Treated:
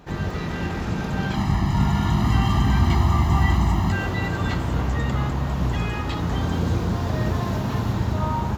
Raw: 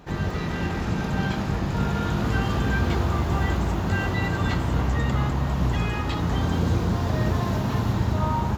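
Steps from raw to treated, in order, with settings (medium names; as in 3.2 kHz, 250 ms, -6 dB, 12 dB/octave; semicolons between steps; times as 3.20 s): 1.34–3.92 s: comb 1 ms, depth 98%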